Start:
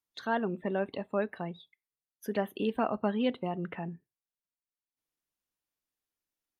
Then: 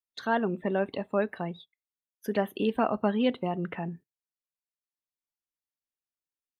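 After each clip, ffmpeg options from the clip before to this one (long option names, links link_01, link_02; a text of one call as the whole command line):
ffmpeg -i in.wav -af "agate=range=-14dB:threshold=-50dB:ratio=16:detection=peak,volume=3.5dB" out.wav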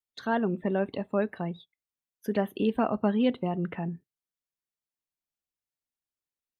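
ffmpeg -i in.wav -af "lowshelf=frequency=340:gain=6.5,volume=-2.5dB" out.wav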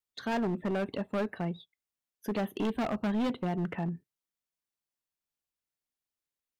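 ffmpeg -i in.wav -af "asoftclip=type=hard:threshold=-27dB" out.wav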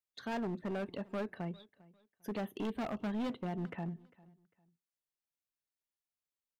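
ffmpeg -i in.wav -af "aecho=1:1:400|800:0.075|0.021,volume=-6.5dB" out.wav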